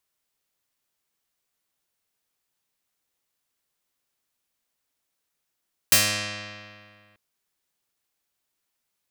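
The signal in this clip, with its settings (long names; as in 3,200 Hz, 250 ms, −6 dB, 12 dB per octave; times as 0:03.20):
Karplus-Strong string G#2, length 1.24 s, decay 2.14 s, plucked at 0.24, medium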